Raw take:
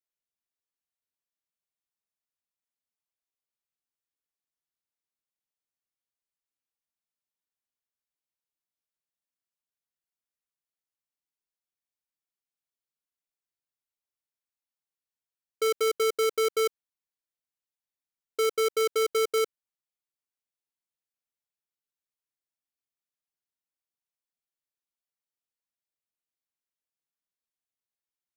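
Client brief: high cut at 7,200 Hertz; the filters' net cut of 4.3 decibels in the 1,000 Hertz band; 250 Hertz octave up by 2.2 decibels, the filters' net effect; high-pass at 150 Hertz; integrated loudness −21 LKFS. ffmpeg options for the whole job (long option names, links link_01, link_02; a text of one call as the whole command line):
ffmpeg -i in.wav -af "highpass=150,lowpass=7200,equalizer=frequency=250:width_type=o:gain=6,equalizer=frequency=1000:width_type=o:gain=-7.5,volume=6.5dB" out.wav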